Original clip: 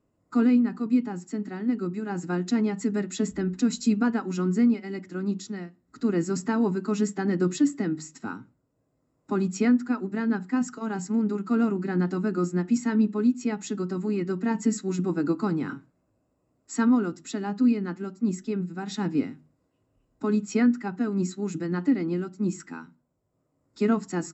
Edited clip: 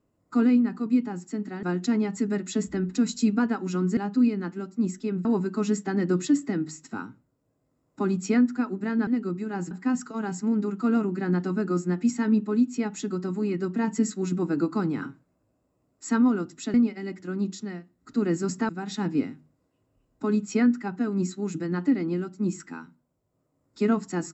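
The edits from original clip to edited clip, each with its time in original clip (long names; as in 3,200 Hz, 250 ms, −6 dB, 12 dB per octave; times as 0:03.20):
0:01.63–0:02.27: move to 0:10.38
0:04.61–0:06.56: swap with 0:17.41–0:18.69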